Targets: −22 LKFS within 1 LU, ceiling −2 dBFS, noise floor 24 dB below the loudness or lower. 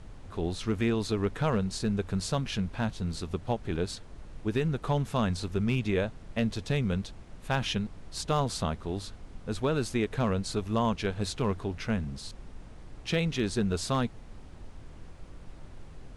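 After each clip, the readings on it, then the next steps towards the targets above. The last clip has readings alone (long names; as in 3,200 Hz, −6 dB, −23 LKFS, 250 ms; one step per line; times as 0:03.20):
share of clipped samples 0.2%; peaks flattened at −18.5 dBFS; background noise floor −47 dBFS; target noise floor −55 dBFS; integrated loudness −31.0 LKFS; sample peak −18.5 dBFS; target loudness −22.0 LKFS
→ clipped peaks rebuilt −18.5 dBFS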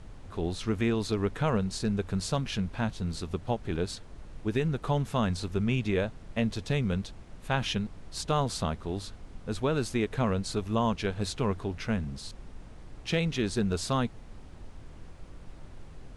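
share of clipped samples 0.0%; background noise floor −47 dBFS; target noise floor −55 dBFS
→ noise reduction from a noise print 8 dB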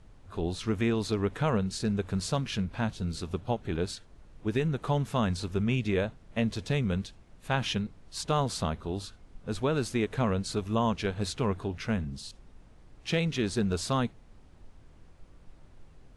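background noise floor −55 dBFS; integrated loudness −31.0 LKFS; sample peak −14.5 dBFS; target loudness −22.0 LKFS
→ level +9 dB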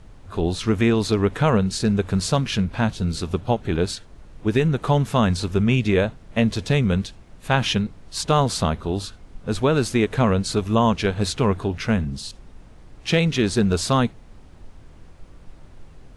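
integrated loudness −22.0 LKFS; sample peak −5.5 dBFS; background noise floor −46 dBFS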